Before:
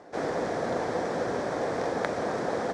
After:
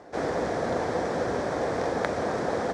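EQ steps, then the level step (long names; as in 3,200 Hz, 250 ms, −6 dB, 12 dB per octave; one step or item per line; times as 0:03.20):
parametric band 68 Hz +8.5 dB 0.91 octaves
+1.5 dB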